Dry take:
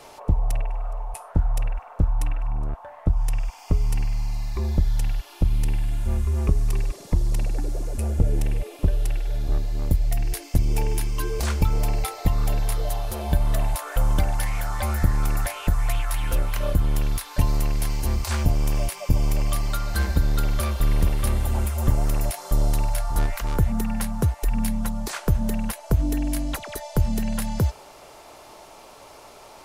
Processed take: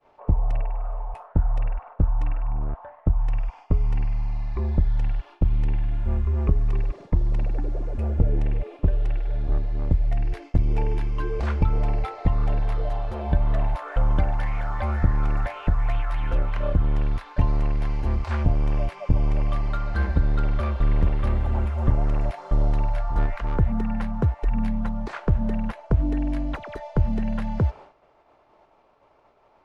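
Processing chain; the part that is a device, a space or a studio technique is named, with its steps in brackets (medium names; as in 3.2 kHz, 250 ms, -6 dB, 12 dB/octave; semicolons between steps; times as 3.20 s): hearing-loss simulation (low-pass 2 kHz 12 dB/octave; expander -37 dBFS)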